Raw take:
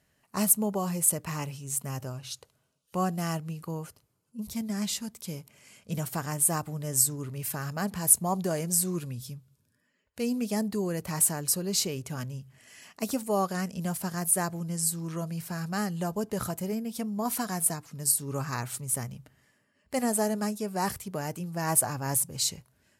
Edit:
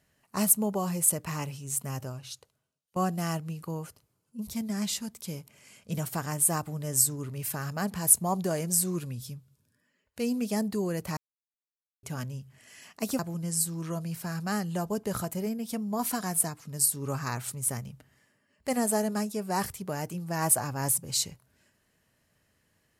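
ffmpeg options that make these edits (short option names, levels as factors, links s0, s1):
-filter_complex "[0:a]asplit=5[s0][s1][s2][s3][s4];[s0]atrim=end=2.96,asetpts=PTS-STARTPTS,afade=t=out:st=2:d=0.96:silence=0.0841395[s5];[s1]atrim=start=2.96:end=11.17,asetpts=PTS-STARTPTS,afade=t=in:d=0.004:c=hsin:silence=0.0841395,afade=t=out:st=8.206:d=0.004:c=hsin[s6];[s2]atrim=start=11.17:end=12.03,asetpts=PTS-STARTPTS,volume=0[s7];[s3]atrim=start=12.03:end=13.192,asetpts=PTS-STARTPTS,afade=t=in:d=0.004:c=hsin[s8];[s4]atrim=start=14.448[s9];[s5][s6][s7][s8]concat=n=4:v=0:a=1[s10];[s10][s9]acrossfade=d=0.004:c1=hsin:c2=hsin"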